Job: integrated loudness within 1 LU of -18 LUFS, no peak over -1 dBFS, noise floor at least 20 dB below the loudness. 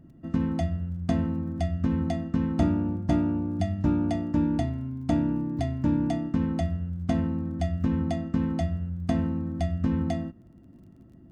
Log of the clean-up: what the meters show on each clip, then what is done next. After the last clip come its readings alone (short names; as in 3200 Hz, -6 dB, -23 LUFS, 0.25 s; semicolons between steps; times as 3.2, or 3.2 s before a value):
ticks 23/s; loudness -28.0 LUFS; peak -13.5 dBFS; loudness target -18.0 LUFS
-> de-click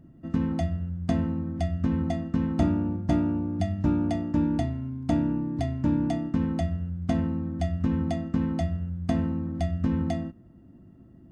ticks 0/s; loudness -28.0 LUFS; peak -13.5 dBFS; loudness target -18.0 LUFS
-> gain +10 dB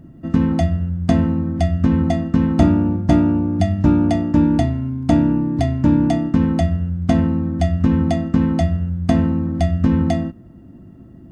loudness -18.0 LUFS; peak -3.5 dBFS; noise floor -41 dBFS